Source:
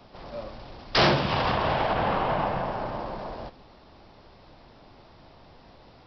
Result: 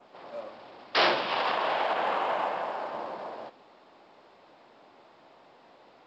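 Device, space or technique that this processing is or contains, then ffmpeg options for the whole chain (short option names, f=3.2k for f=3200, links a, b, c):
telephone: -filter_complex "[0:a]asettb=1/sr,asplit=3[a][b][c];[a]atrim=end=0.984[d];[b]atrim=start=0.98:end=2.93,asetpts=PTS-STARTPTS,afade=t=in:d=0.004:c=qsin,afade=t=out:st=1.946:d=0.004:c=qsin,highpass=f=310:p=1[e];[c]atrim=start=2.926[f];[d][e]acrossfade=d=0.004:c1=hsin:c2=qsin[g];[g][f]acrossfade=d=0.004:c1=qsin:c2=hsin,adynamicequalizer=threshold=0.00562:dfrequency=5300:dqfactor=0.75:tfrequency=5300:tqfactor=0.75:attack=5:release=100:ratio=0.375:range=2.5:mode=boostabove:tftype=bell,highpass=340,lowpass=3.4k,volume=-1.5dB" -ar 16000 -c:a pcm_mulaw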